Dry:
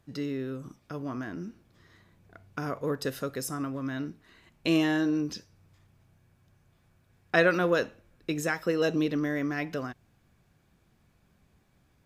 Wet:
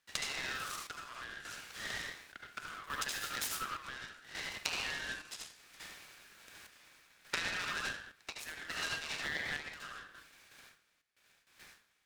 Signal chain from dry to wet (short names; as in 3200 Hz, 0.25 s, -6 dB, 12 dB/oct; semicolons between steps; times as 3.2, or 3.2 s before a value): 5.36–7.65 spectral limiter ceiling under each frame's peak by 19 dB; gate with hold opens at -55 dBFS; rotary speaker horn 1 Hz; reverb RT60 0.40 s, pre-delay 62 ms, DRR -1.5 dB; vocal rider within 4 dB 0.5 s; HPF 1500 Hz 24 dB/oct; compressor 12:1, threshold -53 dBFS, peak gain reduction 26.5 dB; chopper 0.69 Hz, depth 60%, duty 60%; noise-modulated delay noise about 1500 Hz, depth 0.042 ms; gain +18 dB